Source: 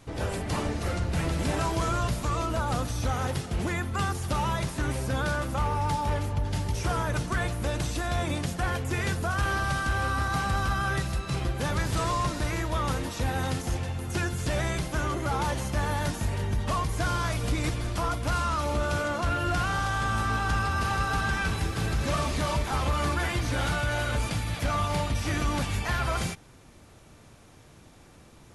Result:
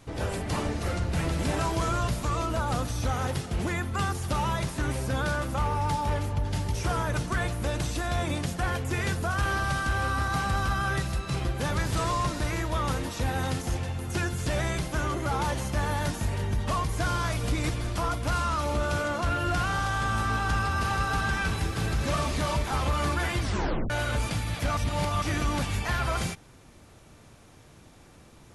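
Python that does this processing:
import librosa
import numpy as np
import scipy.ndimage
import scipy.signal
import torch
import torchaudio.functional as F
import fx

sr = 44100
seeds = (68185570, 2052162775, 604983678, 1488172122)

y = fx.edit(x, sr, fx.tape_stop(start_s=23.42, length_s=0.48),
    fx.reverse_span(start_s=24.77, length_s=0.45), tone=tone)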